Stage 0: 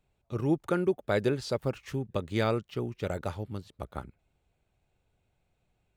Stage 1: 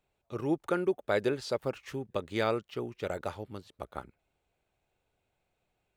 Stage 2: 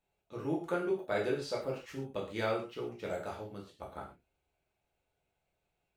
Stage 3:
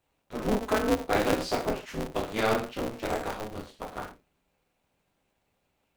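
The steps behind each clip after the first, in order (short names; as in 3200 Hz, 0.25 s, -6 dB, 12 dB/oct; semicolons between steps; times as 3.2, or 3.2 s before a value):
tone controls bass -9 dB, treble -2 dB
non-linear reverb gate 0.16 s falling, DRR -3.5 dB; gain -8 dB
polarity switched at an audio rate 110 Hz; gain +7 dB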